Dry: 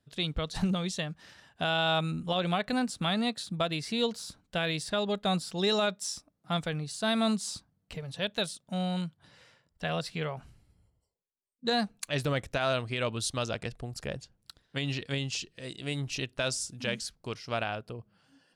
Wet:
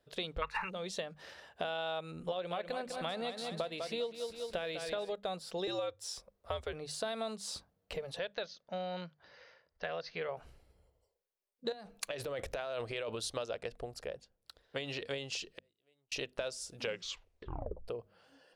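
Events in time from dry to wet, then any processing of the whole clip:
0.42–0.69 spectral gain 830–2800 Hz +24 dB
2.31–5.13 feedback echo 0.199 s, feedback 40%, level -9 dB
5.67–6.73 frequency shift -88 Hz
8.19–10.29 rippled Chebyshev low-pass 6500 Hz, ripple 6 dB
11.72–13.2 negative-ratio compressor -36 dBFS
13.71–14.77 dip -10.5 dB, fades 0.41 s
15.49–16.12 flipped gate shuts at -34 dBFS, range -41 dB
16.8 tape stop 1.08 s
whole clip: graphic EQ 125/250/500/8000 Hz -9/-7/+10/-5 dB; compressor 6:1, threshold -37 dBFS; notches 50/100/150/200/250 Hz; gain +1.5 dB

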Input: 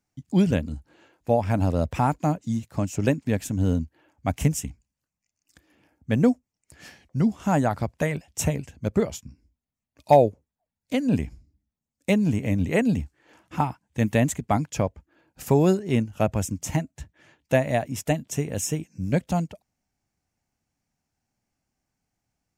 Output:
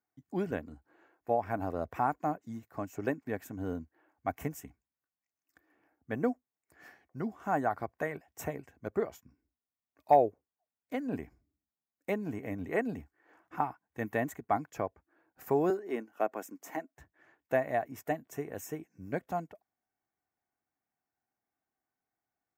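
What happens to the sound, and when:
15.7–16.98 HPF 240 Hz 24 dB/oct
whole clip: HPF 560 Hz 6 dB/oct; band shelf 5300 Hz -15.5 dB 2.4 oct; comb 2.7 ms, depth 34%; gain -4 dB

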